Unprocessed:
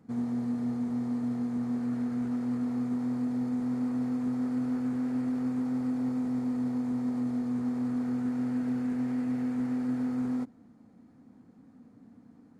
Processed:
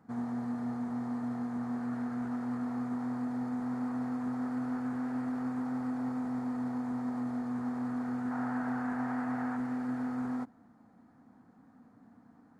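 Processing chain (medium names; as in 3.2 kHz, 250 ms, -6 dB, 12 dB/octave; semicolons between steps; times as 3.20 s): high-order bell 1.1 kHz +9 dB, from 8.30 s +15.5 dB, from 9.56 s +9 dB; trim -4.5 dB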